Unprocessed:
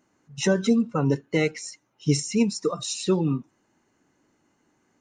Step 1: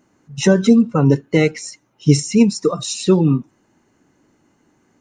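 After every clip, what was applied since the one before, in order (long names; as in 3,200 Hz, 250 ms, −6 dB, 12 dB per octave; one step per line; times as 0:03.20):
low-shelf EQ 430 Hz +5 dB
level +5.5 dB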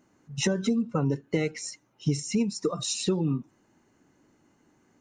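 downward compressor 5 to 1, threshold −18 dBFS, peak gain reduction 11 dB
level −5 dB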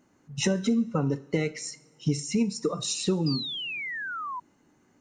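coupled-rooms reverb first 0.48 s, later 3 s, from −22 dB, DRR 13 dB
sound drawn into the spectrogram fall, 0:03.26–0:04.40, 960–5,000 Hz −34 dBFS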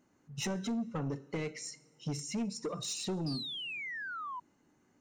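soft clipping −24 dBFS, distortion −11 dB
level −6 dB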